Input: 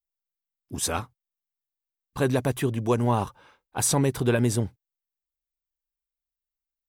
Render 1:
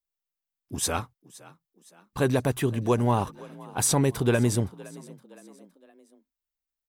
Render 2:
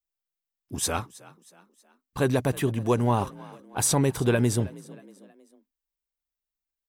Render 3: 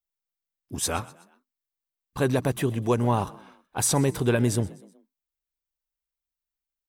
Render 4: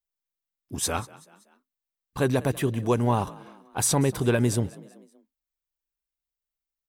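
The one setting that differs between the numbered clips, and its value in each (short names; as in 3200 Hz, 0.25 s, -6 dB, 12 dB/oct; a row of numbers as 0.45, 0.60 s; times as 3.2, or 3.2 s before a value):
frequency-shifting echo, time: 0.516, 0.318, 0.125, 0.191 s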